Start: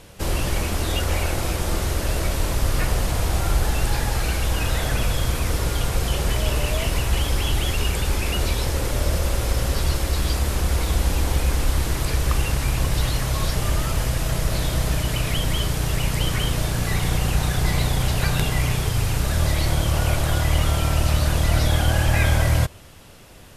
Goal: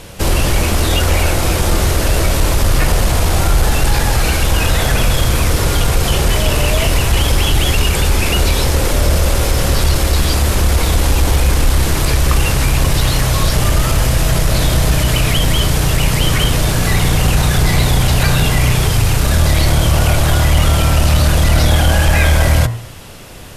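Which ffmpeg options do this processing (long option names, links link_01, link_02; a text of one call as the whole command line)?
ffmpeg -i in.wav -filter_complex "[0:a]bandreject=frequency=57.92:width_type=h:width=4,bandreject=frequency=115.84:width_type=h:width=4,bandreject=frequency=173.76:width_type=h:width=4,bandreject=frequency=231.68:width_type=h:width=4,bandreject=frequency=289.6:width_type=h:width=4,bandreject=frequency=347.52:width_type=h:width=4,bandreject=frequency=405.44:width_type=h:width=4,bandreject=frequency=463.36:width_type=h:width=4,bandreject=frequency=521.28:width_type=h:width=4,bandreject=frequency=579.2:width_type=h:width=4,bandreject=frequency=637.12:width_type=h:width=4,bandreject=frequency=695.04:width_type=h:width=4,bandreject=frequency=752.96:width_type=h:width=4,bandreject=frequency=810.88:width_type=h:width=4,bandreject=frequency=868.8:width_type=h:width=4,bandreject=frequency=926.72:width_type=h:width=4,bandreject=frequency=984.64:width_type=h:width=4,bandreject=frequency=1042.56:width_type=h:width=4,bandreject=frequency=1100.48:width_type=h:width=4,bandreject=frequency=1158.4:width_type=h:width=4,bandreject=frequency=1216.32:width_type=h:width=4,bandreject=frequency=1274.24:width_type=h:width=4,bandreject=frequency=1332.16:width_type=h:width=4,bandreject=frequency=1390.08:width_type=h:width=4,bandreject=frequency=1448:width_type=h:width=4,bandreject=frequency=1505.92:width_type=h:width=4,bandreject=frequency=1563.84:width_type=h:width=4,bandreject=frequency=1621.76:width_type=h:width=4,bandreject=frequency=1679.68:width_type=h:width=4,bandreject=frequency=1737.6:width_type=h:width=4,bandreject=frequency=1795.52:width_type=h:width=4,bandreject=frequency=1853.44:width_type=h:width=4,bandreject=frequency=1911.36:width_type=h:width=4,bandreject=frequency=1969.28:width_type=h:width=4,bandreject=frequency=2027.2:width_type=h:width=4,bandreject=frequency=2085.12:width_type=h:width=4,asplit=2[link_01][link_02];[link_02]alimiter=limit=-16.5dB:level=0:latency=1,volume=-1.5dB[link_03];[link_01][link_03]amix=inputs=2:normalize=0,acontrast=62" out.wav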